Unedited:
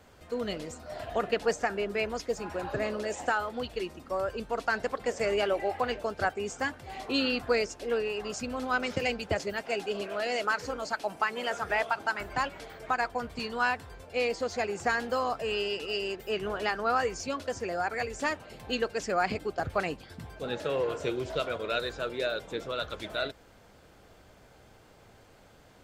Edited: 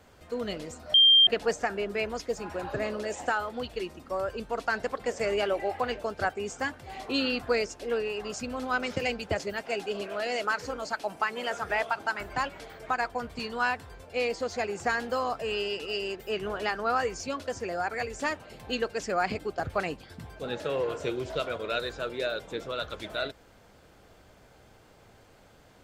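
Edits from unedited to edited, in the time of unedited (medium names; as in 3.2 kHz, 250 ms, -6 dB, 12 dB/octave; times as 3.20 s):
0.94–1.27 s: bleep 3.18 kHz -14.5 dBFS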